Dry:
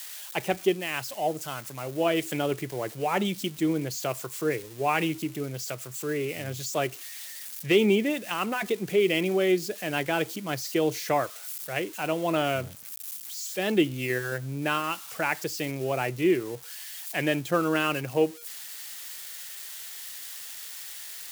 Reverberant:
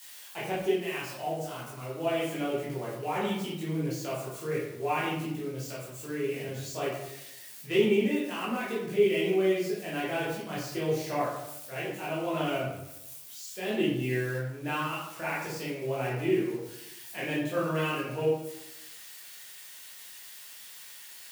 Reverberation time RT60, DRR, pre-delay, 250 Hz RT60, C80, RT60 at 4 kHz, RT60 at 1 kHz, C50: 0.90 s, −8.5 dB, 12 ms, 1.0 s, 5.0 dB, 0.50 s, 0.80 s, 2.0 dB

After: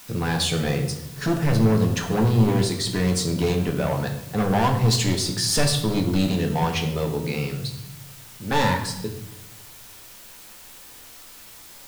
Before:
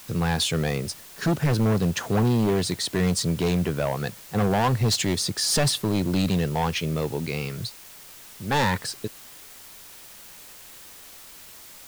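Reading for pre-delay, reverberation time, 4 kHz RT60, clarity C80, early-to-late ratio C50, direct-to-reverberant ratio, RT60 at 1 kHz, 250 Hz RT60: 4 ms, 0.85 s, 0.70 s, 10.5 dB, 7.5 dB, 2.0 dB, 0.80 s, 1.2 s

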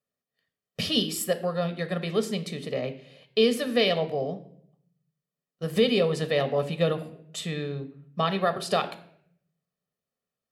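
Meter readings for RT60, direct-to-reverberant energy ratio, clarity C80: 0.70 s, 9.5 dB, 17.0 dB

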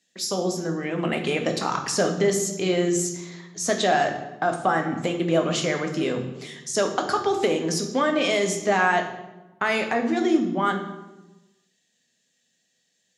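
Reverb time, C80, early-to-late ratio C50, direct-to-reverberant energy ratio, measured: 1.1 s, 10.5 dB, 8.0 dB, 4.0 dB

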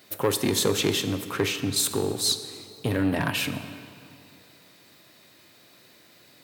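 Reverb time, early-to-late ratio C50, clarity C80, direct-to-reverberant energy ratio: 2.6 s, 10.5 dB, 11.0 dB, 9.5 dB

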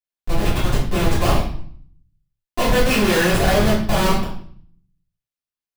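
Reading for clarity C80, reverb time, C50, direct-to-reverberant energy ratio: 8.0 dB, 0.55 s, 4.0 dB, −10.5 dB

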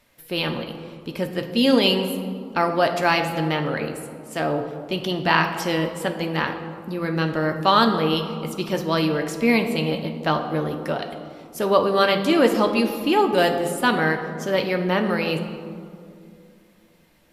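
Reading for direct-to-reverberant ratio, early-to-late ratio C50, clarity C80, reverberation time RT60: 4.0 dB, 8.0 dB, 9.5 dB, 2.4 s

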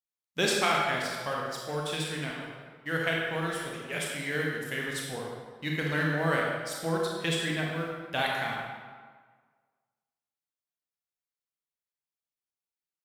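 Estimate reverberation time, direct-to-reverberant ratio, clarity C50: 1.6 s, −2.5 dB, −0.5 dB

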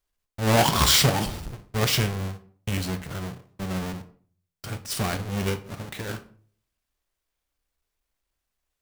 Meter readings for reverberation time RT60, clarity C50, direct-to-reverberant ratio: 0.50 s, 15.5 dB, 10.5 dB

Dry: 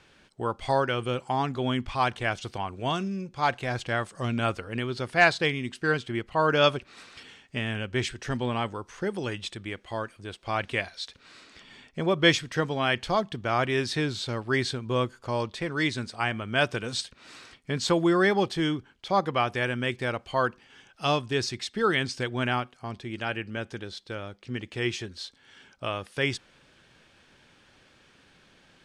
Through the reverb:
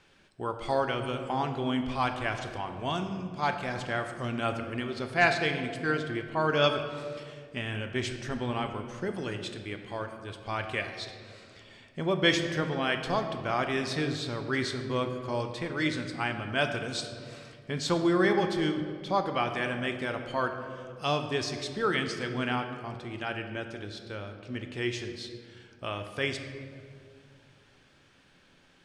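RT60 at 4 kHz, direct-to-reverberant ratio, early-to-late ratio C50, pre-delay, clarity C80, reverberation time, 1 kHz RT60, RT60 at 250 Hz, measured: 1.2 s, 5.5 dB, 7.5 dB, 3 ms, 8.5 dB, 2.2 s, 1.8 s, 2.9 s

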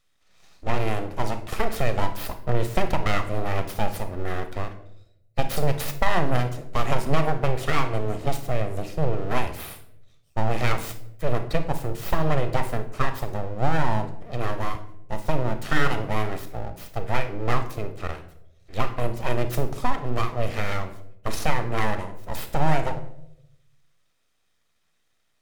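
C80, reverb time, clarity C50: 15.0 dB, 0.80 s, 11.0 dB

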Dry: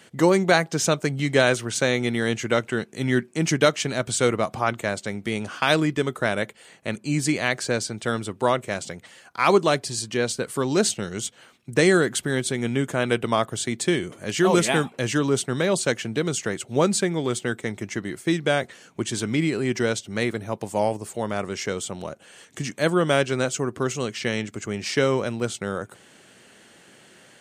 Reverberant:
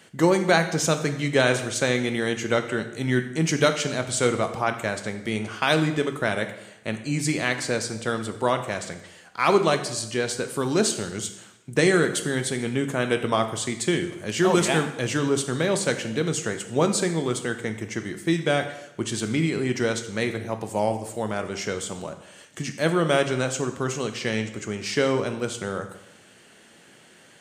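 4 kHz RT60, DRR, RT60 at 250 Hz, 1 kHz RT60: 0.80 s, 7.0 dB, 0.85 s, 0.85 s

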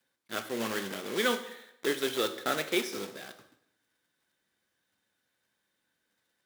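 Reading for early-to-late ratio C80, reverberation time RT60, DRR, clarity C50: 14.0 dB, 0.80 s, 8.5 dB, 12.0 dB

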